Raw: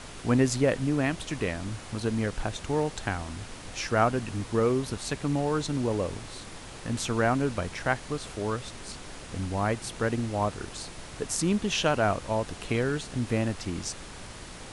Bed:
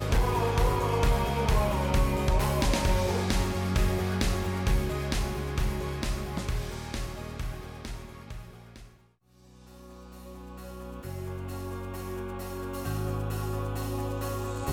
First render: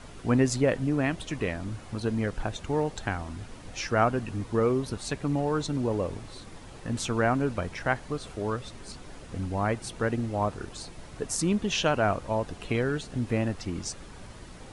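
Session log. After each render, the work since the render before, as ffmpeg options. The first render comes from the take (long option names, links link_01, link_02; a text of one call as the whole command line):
ffmpeg -i in.wav -af "afftdn=noise_reduction=8:noise_floor=-43" out.wav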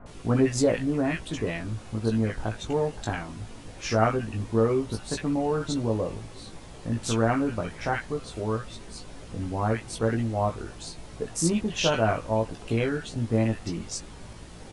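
ffmpeg -i in.wav -filter_complex "[0:a]asplit=2[link_01][link_02];[link_02]adelay=18,volume=-4dB[link_03];[link_01][link_03]amix=inputs=2:normalize=0,acrossover=split=1500[link_04][link_05];[link_05]adelay=60[link_06];[link_04][link_06]amix=inputs=2:normalize=0" out.wav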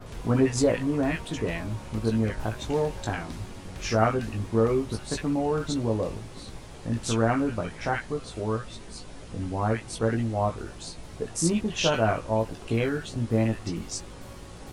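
ffmpeg -i in.wav -i bed.wav -filter_complex "[1:a]volume=-16dB[link_01];[0:a][link_01]amix=inputs=2:normalize=0" out.wav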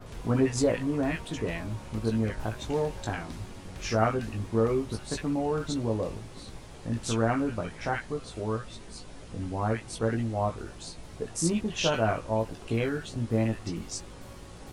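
ffmpeg -i in.wav -af "volume=-2.5dB" out.wav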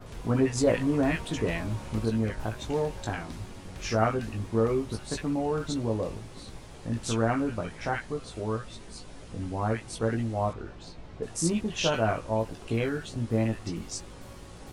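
ffmpeg -i in.wav -filter_complex "[0:a]asettb=1/sr,asplit=3[link_01][link_02][link_03];[link_01]atrim=end=10.534[link_04];[link_02]atrim=start=10.53:end=11.23,asetpts=PTS-STARTPTS,afade=type=in:duration=0.004:curve=qsin,afade=type=out:start_time=0.696:duration=0.004:curve=qsin,adynamicsmooth=sensitivity=2:basefreq=4000[link_05];[link_03]atrim=start=11.226[link_06];[link_04][link_05]acrossfade=duration=0.004:curve1=hsin:curve2=qsin[link_07];[link_07][link_06]acrossfade=duration=0.004:curve1=qsin:curve2=hsin,asplit=3[link_08][link_09][link_10];[link_08]atrim=end=0.672[link_11];[link_09]atrim=start=0.668:end=2.052,asetpts=PTS-STARTPTS,volume=3dB[link_12];[link_10]atrim=start=2.048[link_13];[link_11][link_12]acrossfade=duration=0.004:curve1=hsin:curve2=hsin[link_14];[link_14][link_13]acrossfade=duration=0.004:curve1=hsin:curve2=hsin" out.wav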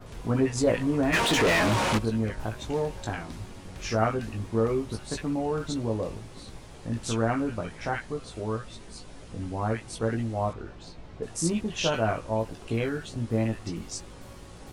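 ffmpeg -i in.wav -filter_complex "[0:a]asplit=3[link_01][link_02][link_03];[link_01]afade=type=out:start_time=1.12:duration=0.02[link_04];[link_02]asplit=2[link_05][link_06];[link_06]highpass=frequency=720:poles=1,volume=32dB,asoftclip=type=tanh:threshold=-15dB[link_07];[link_05][link_07]amix=inputs=2:normalize=0,lowpass=frequency=4300:poles=1,volume=-6dB,afade=type=in:start_time=1.12:duration=0.02,afade=type=out:start_time=1.97:duration=0.02[link_08];[link_03]afade=type=in:start_time=1.97:duration=0.02[link_09];[link_04][link_08][link_09]amix=inputs=3:normalize=0" out.wav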